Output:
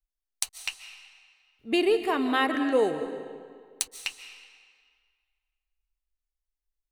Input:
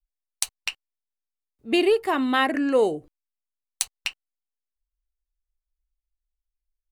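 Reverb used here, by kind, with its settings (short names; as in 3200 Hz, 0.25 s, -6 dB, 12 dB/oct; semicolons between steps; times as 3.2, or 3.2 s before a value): digital reverb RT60 1.9 s, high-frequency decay 0.85×, pre-delay 0.105 s, DRR 9 dB; gain -3.5 dB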